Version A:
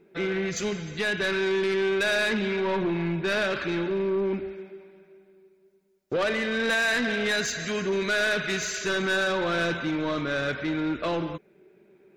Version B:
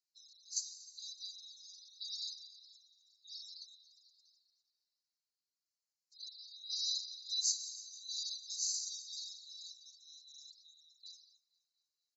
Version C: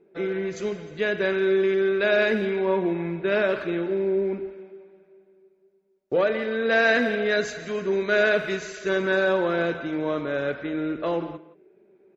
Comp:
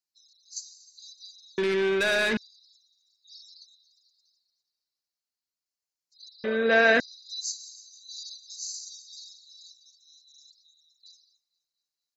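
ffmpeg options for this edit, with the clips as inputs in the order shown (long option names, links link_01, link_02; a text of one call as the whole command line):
ffmpeg -i take0.wav -i take1.wav -i take2.wav -filter_complex "[1:a]asplit=3[link_01][link_02][link_03];[link_01]atrim=end=1.582[link_04];[0:a]atrim=start=1.578:end=2.372[link_05];[link_02]atrim=start=2.368:end=6.442[link_06];[2:a]atrim=start=6.438:end=7.002[link_07];[link_03]atrim=start=6.998[link_08];[link_04][link_05]acrossfade=duration=0.004:curve1=hsin:curve2=hsin[link_09];[link_09][link_06]acrossfade=duration=0.004:curve1=hsin:curve2=hsin[link_10];[link_10][link_07]acrossfade=duration=0.004:curve1=hsin:curve2=hsin[link_11];[link_11][link_08]acrossfade=duration=0.004:curve1=hsin:curve2=hsin" out.wav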